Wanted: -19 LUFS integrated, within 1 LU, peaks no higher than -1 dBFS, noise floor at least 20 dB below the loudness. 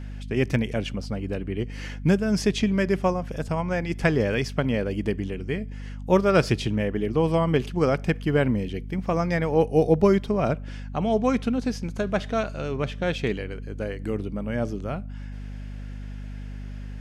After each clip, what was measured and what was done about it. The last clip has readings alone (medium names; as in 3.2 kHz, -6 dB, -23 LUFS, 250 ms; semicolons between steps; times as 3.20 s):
hum 50 Hz; highest harmonic 250 Hz; hum level -33 dBFS; loudness -25.0 LUFS; peak level -7.0 dBFS; loudness target -19.0 LUFS
-> hum notches 50/100/150/200/250 Hz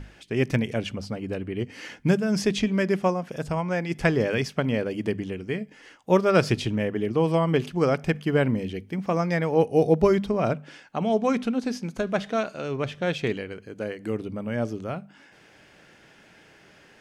hum not found; loudness -26.0 LUFS; peak level -7.0 dBFS; loudness target -19.0 LUFS
-> trim +7 dB; peak limiter -1 dBFS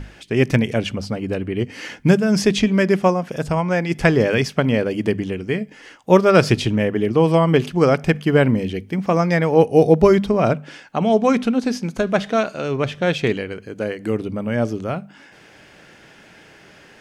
loudness -19.0 LUFS; peak level -1.0 dBFS; noise floor -48 dBFS